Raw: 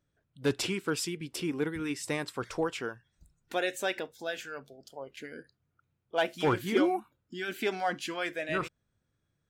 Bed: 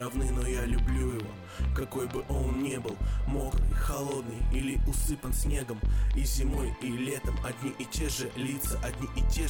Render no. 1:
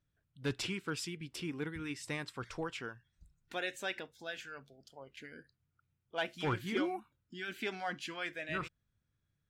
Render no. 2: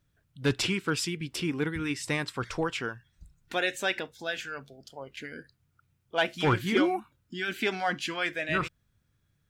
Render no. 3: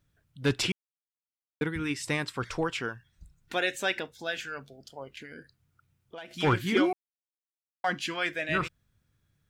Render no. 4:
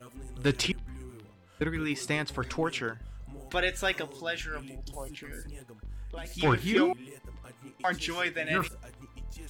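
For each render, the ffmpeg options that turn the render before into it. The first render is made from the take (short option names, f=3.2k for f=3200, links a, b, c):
-af "lowpass=f=3k:p=1,equalizer=f=500:w=0.45:g=-10"
-af "volume=9.5dB"
-filter_complex "[0:a]asettb=1/sr,asplit=3[a][b][c];[a]atrim=end=5.174[d];[b]atrim=start=5.17:end=6.31,asetpts=PTS-STARTPTS,afade=t=in:d=0.004:c=qsin,afade=t=out:st=1.136:d=0.004:c=qsin,acompressor=threshold=-40dB:ratio=6:attack=3.2:release=140:knee=1:detection=peak[e];[c]atrim=start=6.306[f];[d][e]acrossfade=d=0.004:c1=hsin:c2=qsin[g];[g][f]acrossfade=d=0.004:c1=qsin:c2=hsin,asplit=5[h][i][j][k][l];[h]atrim=end=0.72,asetpts=PTS-STARTPTS,afade=t=out:st=0.716:d=0.004:c=hsin[m];[i]atrim=start=0.72:end=1.61,asetpts=PTS-STARTPTS,volume=0[n];[j]atrim=start=1.61:end=6.93,asetpts=PTS-STARTPTS,afade=t=in:d=0.004:c=hsin,afade=t=out:st=5.316:d=0.004:c=hsin[o];[k]atrim=start=6.93:end=7.84,asetpts=PTS-STARTPTS,volume=0[p];[l]atrim=start=7.84,asetpts=PTS-STARTPTS,afade=t=in:d=0.004:c=hsin[q];[m][n][o][p][q]concat=n=5:v=0:a=1"
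-filter_complex "[1:a]volume=-14.5dB[a];[0:a][a]amix=inputs=2:normalize=0"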